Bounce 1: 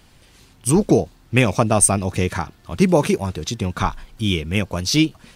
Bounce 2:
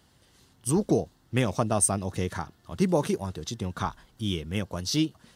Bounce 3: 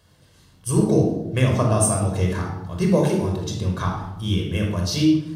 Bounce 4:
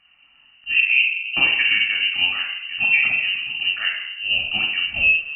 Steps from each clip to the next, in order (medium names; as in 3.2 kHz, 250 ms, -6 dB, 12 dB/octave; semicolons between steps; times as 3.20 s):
high-pass 61 Hz; peaking EQ 2.4 kHz -11.5 dB 0.21 oct; trim -8.5 dB
reverberation RT60 0.95 s, pre-delay 23 ms, DRR 0.5 dB
level-controlled noise filter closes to 2.3 kHz; frequency inversion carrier 2.9 kHz